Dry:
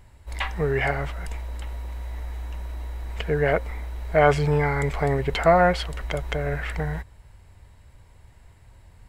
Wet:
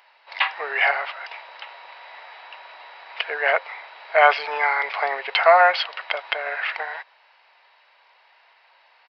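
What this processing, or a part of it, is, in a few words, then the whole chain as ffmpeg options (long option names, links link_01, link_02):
musical greeting card: -af "aresample=11025,aresample=44100,highpass=frequency=710:width=0.5412,highpass=frequency=710:width=1.3066,equalizer=frequency=2600:width_type=o:width=0.26:gain=5,volume=7dB"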